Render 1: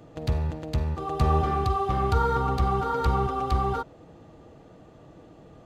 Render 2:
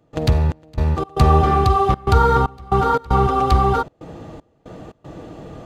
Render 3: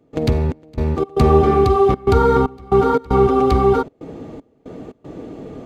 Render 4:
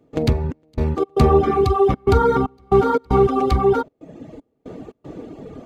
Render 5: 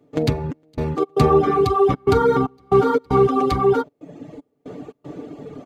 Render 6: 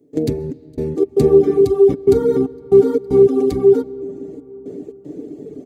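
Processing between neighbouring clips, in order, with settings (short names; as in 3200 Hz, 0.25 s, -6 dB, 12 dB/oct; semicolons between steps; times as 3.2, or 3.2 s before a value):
in parallel at +1 dB: compressor, threshold -32 dBFS, peak gain reduction 13.5 dB; on the sum: step gate ".xxx..xx.xxxxxx" 116 bpm -24 dB; gain +7 dB
small resonant body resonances 260/400/2200 Hz, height 11 dB, ringing for 35 ms; gain -3 dB
reverb removal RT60 1.2 s
HPF 110 Hz 6 dB/oct; comb 6.9 ms, depth 43%
EQ curve 130 Hz 0 dB, 390 Hz +10 dB, 560 Hz -1 dB, 1200 Hz -16 dB, 1800 Hz -6 dB, 2900 Hz -8 dB, 8100 Hz +6 dB; on a send at -20 dB: reverb RT60 4.7 s, pre-delay 90 ms; on the sum: gain -3.5 dB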